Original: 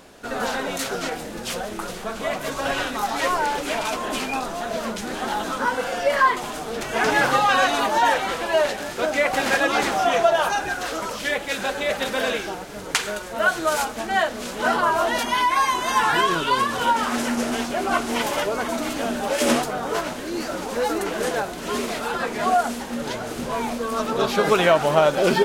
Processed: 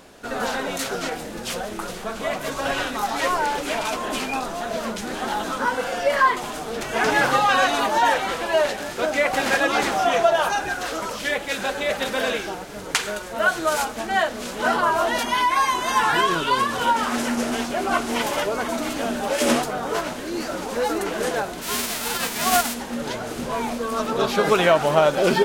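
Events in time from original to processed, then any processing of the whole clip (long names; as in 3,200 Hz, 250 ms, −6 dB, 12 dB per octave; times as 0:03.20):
0:21.61–0:22.73: spectral envelope flattened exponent 0.3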